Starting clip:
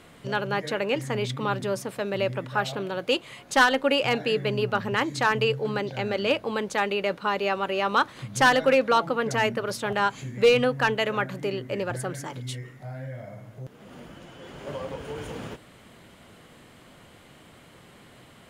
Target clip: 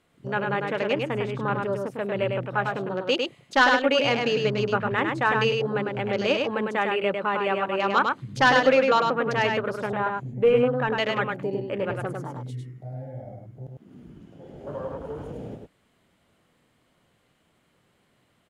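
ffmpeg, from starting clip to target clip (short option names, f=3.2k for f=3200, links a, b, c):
-filter_complex "[0:a]asettb=1/sr,asplit=3[a][b][c];[a]atrim=end=9.864[d];[b]atrim=start=9.86:end=10.93,asetpts=PTS-STARTPTS,afade=t=in:d=0.004:c=qsin,afade=t=out:st=1.066:d=0.004:c=qsin,equalizer=f=4.8k:w=0.36:g=-11[e];[c]atrim=start=10.926[f];[d][e]acrossfade=d=0.004:c1=hsin:c2=qsin[g];[g][f]acrossfade=d=0.004:c1=qsin:c2=hsin,afwtdn=0.0158,aecho=1:1:102:0.631"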